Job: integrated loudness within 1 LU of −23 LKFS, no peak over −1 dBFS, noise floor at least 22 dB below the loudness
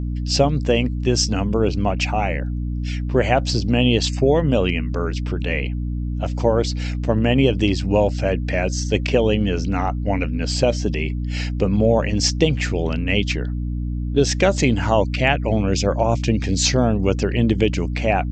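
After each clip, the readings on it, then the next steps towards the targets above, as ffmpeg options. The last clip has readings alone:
mains hum 60 Hz; hum harmonics up to 300 Hz; level of the hum −22 dBFS; integrated loudness −20.0 LKFS; sample peak −2.0 dBFS; target loudness −23.0 LKFS
→ -af "bandreject=frequency=60:width_type=h:width=4,bandreject=frequency=120:width_type=h:width=4,bandreject=frequency=180:width_type=h:width=4,bandreject=frequency=240:width_type=h:width=4,bandreject=frequency=300:width_type=h:width=4"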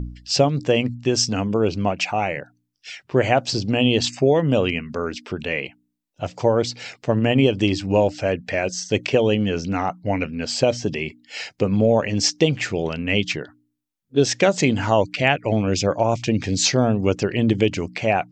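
mains hum none found; integrated loudness −21.0 LKFS; sample peak −2.5 dBFS; target loudness −23.0 LKFS
→ -af "volume=-2dB"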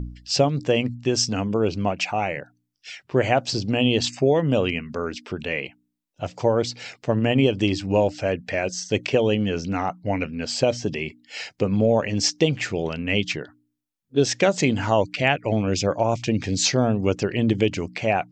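integrated loudness −23.0 LKFS; sample peak −4.5 dBFS; background noise floor −74 dBFS

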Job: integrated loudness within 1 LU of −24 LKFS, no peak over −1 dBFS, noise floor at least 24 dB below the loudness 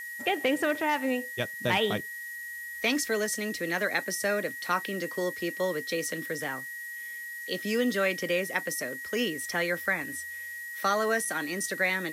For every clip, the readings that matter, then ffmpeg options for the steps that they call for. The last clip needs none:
interfering tone 1,900 Hz; level of the tone −37 dBFS; background noise floor −40 dBFS; target noise floor −54 dBFS; integrated loudness −29.5 LKFS; sample peak −13.0 dBFS; target loudness −24.0 LKFS
→ -af "bandreject=frequency=1900:width=30"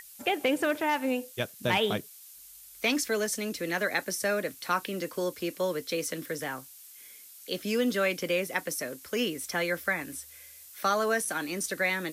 interfering tone none found; background noise floor −50 dBFS; target noise floor −54 dBFS
→ -af "afftdn=noise_reduction=6:noise_floor=-50"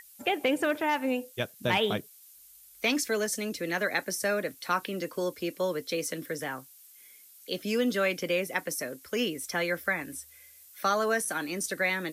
background noise floor −55 dBFS; integrated loudness −30.0 LKFS; sample peak −13.0 dBFS; target loudness −24.0 LKFS
→ -af "volume=6dB"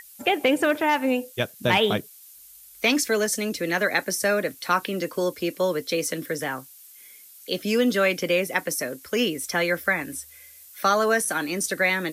integrated loudness −24.0 LKFS; sample peak −7.0 dBFS; background noise floor −49 dBFS

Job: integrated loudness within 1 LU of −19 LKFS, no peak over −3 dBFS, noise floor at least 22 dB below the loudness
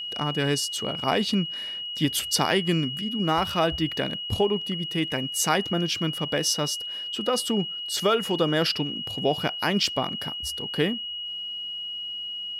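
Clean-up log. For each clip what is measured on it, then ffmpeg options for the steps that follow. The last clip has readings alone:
interfering tone 2,900 Hz; level of the tone −31 dBFS; integrated loudness −25.5 LKFS; sample peak −8.5 dBFS; target loudness −19.0 LKFS
→ -af "bandreject=frequency=2900:width=30"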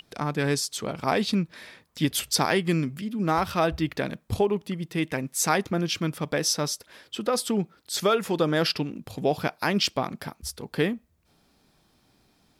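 interfering tone none found; integrated loudness −26.5 LKFS; sample peak −9.0 dBFS; target loudness −19.0 LKFS
→ -af "volume=7.5dB,alimiter=limit=-3dB:level=0:latency=1"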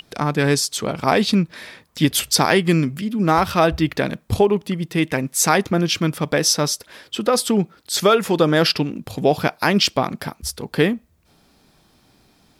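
integrated loudness −19.5 LKFS; sample peak −3.0 dBFS; background noise floor −58 dBFS

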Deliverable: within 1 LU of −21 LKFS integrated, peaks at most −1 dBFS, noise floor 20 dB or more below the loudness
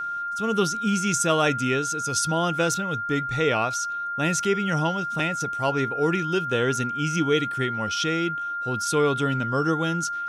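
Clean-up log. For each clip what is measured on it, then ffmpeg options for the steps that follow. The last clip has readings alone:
interfering tone 1,400 Hz; level of the tone −27 dBFS; integrated loudness −24.0 LKFS; sample peak −9.0 dBFS; target loudness −21.0 LKFS
→ -af "bandreject=frequency=1400:width=30"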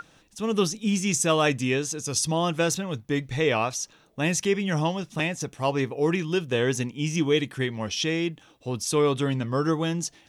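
interfering tone none found; integrated loudness −26.0 LKFS; sample peak −10.0 dBFS; target loudness −21.0 LKFS
→ -af "volume=5dB"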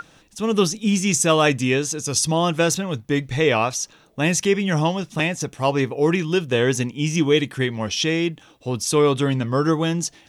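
integrated loudness −21.0 LKFS; sample peak −5.0 dBFS; background noise floor −53 dBFS

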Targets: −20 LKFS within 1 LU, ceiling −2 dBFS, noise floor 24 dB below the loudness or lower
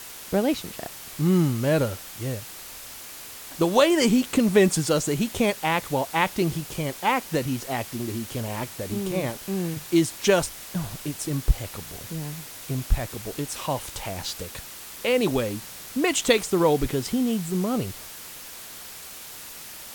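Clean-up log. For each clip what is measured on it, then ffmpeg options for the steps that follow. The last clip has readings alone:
background noise floor −41 dBFS; target noise floor −49 dBFS; integrated loudness −25.0 LKFS; sample peak −4.5 dBFS; target loudness −20.0 LKFS
→ -af "afftdn=noise_reduction=8:noise_floor=-41"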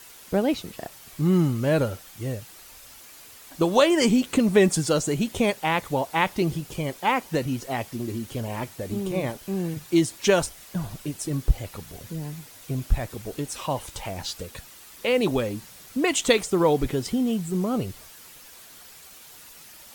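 background noise floor −47 dBFS; target noise floor −49 dBFS
→ -af "afftdn=noise_reduction=6:noise_floor=-47"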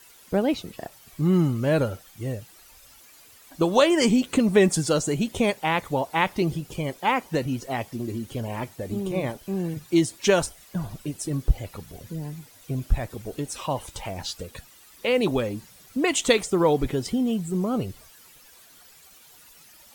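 background noise floor −52 dBFS; integrated loudness −25.5 LKFS; sample peak −4.5 dBFS; target loudness −20.0 LKFS
→ -af "volume=5.5dB,alimiter=limit=-2dB:level=0:latency=1"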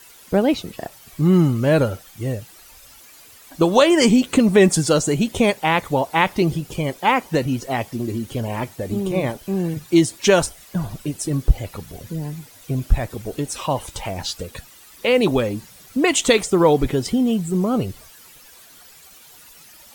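integrated loudness −20.0 LKFS; sample peak −2.0 dBFS; background noise floor −47 dBFS

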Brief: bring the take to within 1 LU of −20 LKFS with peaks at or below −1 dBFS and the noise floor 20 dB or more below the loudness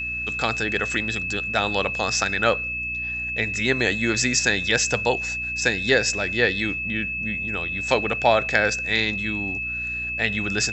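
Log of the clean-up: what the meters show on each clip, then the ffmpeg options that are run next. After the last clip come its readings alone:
mains hum 60 Hz; hum harmonics up to 300 Hz; level of the hum −38 dBFS; interfering tone 2,600 Hz; level of the tone −26 dBFS; integrated loudness −22.0 LKFS; sample peak −3.0 dBFS; target loudness −20.0 LKFS
→ -af "bandreject=frequency=60:width_type=h:width=4,bandreject=frequency=120:width_type=h:width=4,bandreject=frequency=180:width_type=h:width=4,bandreject=frequency=240:width_type=h:width=4,bandreject=frequency=300:width_type=h:width=4"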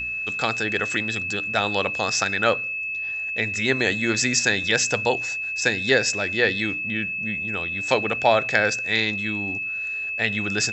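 mains hum none found; interfering tone 2,600 Hz; level of the tone −26 dBFS
→ -af "bandreject=frequency=2600:width=30"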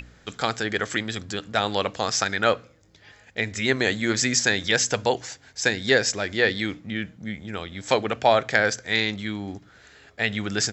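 interfering tone none found; integrated loudness −24.0 LKFS; sample peak −3.5 dBFS; target loudness −20.0 LKFS
→ -af "volume=4dB,alimiter=limit=-1dB:level=0:latency=1"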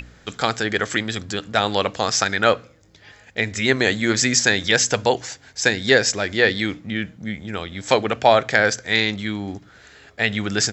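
integrated loudness −20.0 LKFS; sample peak −1.0 dBFS; background noise floor −51 dBFS

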